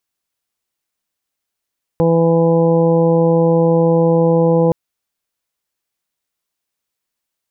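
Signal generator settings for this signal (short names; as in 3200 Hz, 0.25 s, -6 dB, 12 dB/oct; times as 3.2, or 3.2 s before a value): steady additive tone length 2.72 s, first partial 166 Hz, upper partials -5/1.5/-15/-9.5/-15 dB, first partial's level -14 dB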